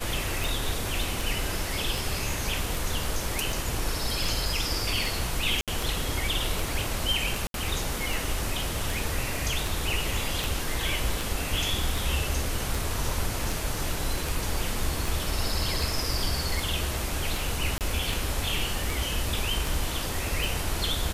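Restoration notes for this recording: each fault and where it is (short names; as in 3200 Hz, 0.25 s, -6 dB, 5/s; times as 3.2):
tick 78 rpm
5.61–5.68 gap 67 ms
7.47–7.54 gap 72 ms
15.08 pop
17.78–17.81 gap 28 ms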